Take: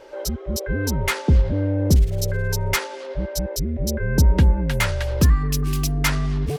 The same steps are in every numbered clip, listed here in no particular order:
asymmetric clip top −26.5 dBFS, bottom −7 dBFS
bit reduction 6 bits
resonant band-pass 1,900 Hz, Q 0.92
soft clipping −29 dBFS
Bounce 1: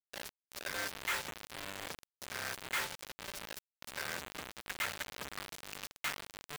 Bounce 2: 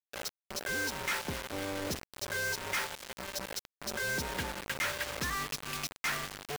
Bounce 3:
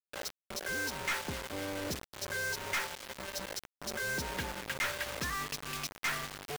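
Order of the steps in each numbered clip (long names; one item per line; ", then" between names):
asymmetric clip, then soft clipping, then resonant band-pass, then bit reduction
resonant band-pass, then soft clipping, then asymmetric clip, then bit reduction
resonant band-pass, then asymmetric clip, then bit reduction, then soft clipping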